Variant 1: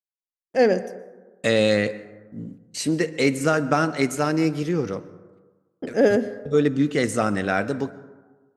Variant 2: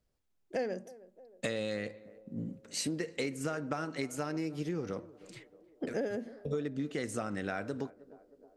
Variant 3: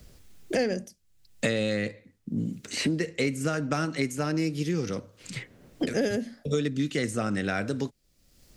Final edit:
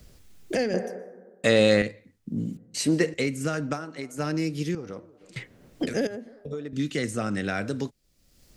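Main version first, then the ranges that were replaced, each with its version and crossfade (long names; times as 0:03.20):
3
0:00.74–0:01.82: punch in from 1
0:02.57–0:03.14: punch in from 1
0:03.76–0:04.16: punch in from 2, crossfade 0.10 s
0:04.75–0:05.36: punch in from 2
0:06.07–0:06.73: punch in from 2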